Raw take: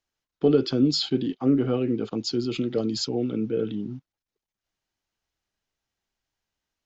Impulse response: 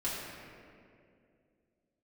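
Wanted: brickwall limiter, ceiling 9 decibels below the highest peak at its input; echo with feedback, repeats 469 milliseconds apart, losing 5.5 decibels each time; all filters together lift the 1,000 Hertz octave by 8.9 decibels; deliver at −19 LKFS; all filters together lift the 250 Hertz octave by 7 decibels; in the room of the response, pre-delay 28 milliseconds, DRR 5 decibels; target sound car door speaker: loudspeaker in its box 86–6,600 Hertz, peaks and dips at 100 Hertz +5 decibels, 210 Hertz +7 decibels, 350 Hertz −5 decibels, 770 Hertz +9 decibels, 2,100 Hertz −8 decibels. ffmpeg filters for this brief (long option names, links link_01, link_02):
-filter_complex "[0:a]equalizer=frequency=250:width_type=o:gain=6,equalizer=frequency=1000:width_type=o:gain=4,alimiter=limit=-14dB:level=0:latency=1,aecho=1:1:469|938|1407|1876|2345|2814|3283:0.531|0.281|0.149|0.079|0.0419|0.0222|0.0118,asplit=2[link_01][link_02];[1:a]atrim=start_sample=2205,adelay=28[link_03];[link_02][link_03]afir=irnorm=-1:irlink=0,volume=-10.5dB[link_04];[link_01][link_04]amix=inputs=2:normalize=0,highpass=86,equalizer=frequency=100:width_type=q:width=4:gain=5,equalizer=frequency=210:width_type=q:width=4:gain=7,equalizer=frequency=350:width_type=q:width=4:gain=-5,equalizer=frequency=770:width_type=q:width=4:gain=9,equalizer=frequency=2100:width_type=q:width=4:gain=-8,lowpass=frequency=6600:width=0.5412,lowpass=frequency=6600:width=1.3066"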